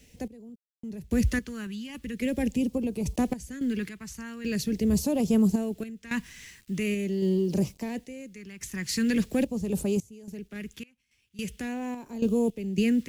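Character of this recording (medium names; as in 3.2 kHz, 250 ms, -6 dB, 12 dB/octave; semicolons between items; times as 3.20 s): a quantiser's noise floor 10-bit, dither none; random-step tremolo 3.6 Hz, depth 100%; phasing stages 2, 0.43 Hz, lowest notch 580–1700 Hz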